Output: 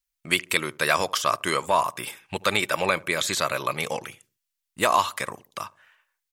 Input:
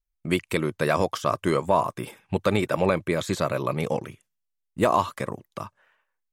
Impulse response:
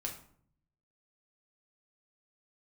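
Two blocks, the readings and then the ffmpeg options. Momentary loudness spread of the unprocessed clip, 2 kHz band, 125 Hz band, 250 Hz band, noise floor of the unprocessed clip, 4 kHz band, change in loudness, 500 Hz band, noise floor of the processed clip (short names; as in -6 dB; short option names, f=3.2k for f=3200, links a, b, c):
15 LU, +6.5 dB, -9.0 dB, -7.5 dB, -80 dBFS, +9.0 dB, +1.0 dB, -3.5 dB, -83 dBFS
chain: -filter_complex "[0:a]tiltshelf=f=810:g=-10,asplit=2[a][b];[b]adelay=73,lowpass=f=840:p=1,volume=-20dB,asplit=2[c][d];[d]adelay=73,lowpass=f=840:p=1,volume=0.44,asplit=2[e][f];[f]adelay=73,lowpass=f=840:p=1,volume=0.44[g];[a][c][e][g]amix=inputs=4:normalize=0"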